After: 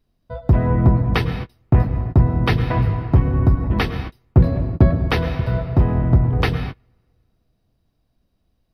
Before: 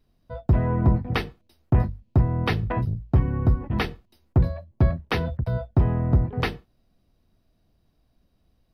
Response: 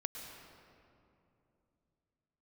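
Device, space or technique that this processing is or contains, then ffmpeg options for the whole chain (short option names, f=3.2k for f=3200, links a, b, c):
keyed gated reverb: -filter_complex "[0:a]asplit=3[a][b][c];[1:a]atrim=start_sample=2205[d];[b][d]afir=irnorm=-1:irlink=0[e];[c]apad=whole_len=385348[f];[e][f]sidechaingate=range=-32dB:threshold=-50dB:ratio=16:detection=peak,volume=3.5dB[g];[a][g]amix=inputs=2:normalize=0,asettb=1/sr,asplit=3[h][i][j];[h]atrim=end=4.374[k];[i]atrim=start=4.37:end=5.08,asetpts=PTS-STARTPTS,afade=t=in:d=0.004:c=qsin,afade=t=out:st=0.706:d=0.004:c=qsin,equalizer=f=270:t=o:w=2:g=5.5[l];[j]atrim=start=5.076[m];[k][l]acrossfade=d=0.004:c1=hsin:c2=qsin[n];[n][m]acrossfade=d=0.004:c1=qsin:c2=hsin,volume=-2dB"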